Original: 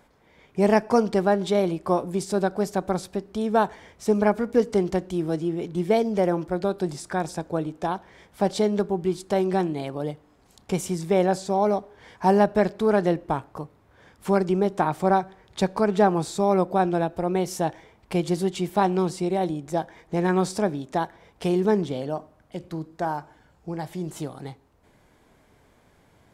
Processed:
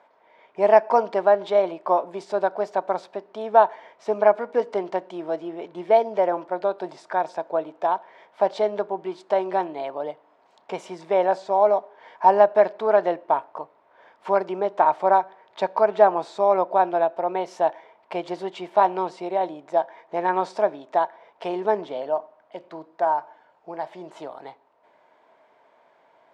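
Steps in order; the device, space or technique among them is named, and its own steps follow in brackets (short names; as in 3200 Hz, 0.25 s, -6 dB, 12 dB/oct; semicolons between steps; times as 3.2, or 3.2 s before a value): tin-can telephone (BPF 480–3100 Hz; small resonant body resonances 650/920 Hz, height 10 dB, ringing for 25 ms)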